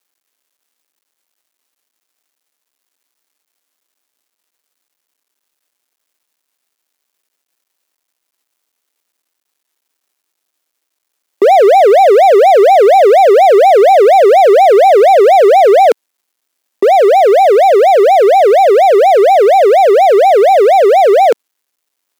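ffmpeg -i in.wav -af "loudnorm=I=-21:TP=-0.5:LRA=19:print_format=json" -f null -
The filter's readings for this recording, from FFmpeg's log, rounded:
"input_i" : "-6.8",
"input_tp" : "-0.7",
"input_lra" : "2.7",
"input_thresh" : "-19.9",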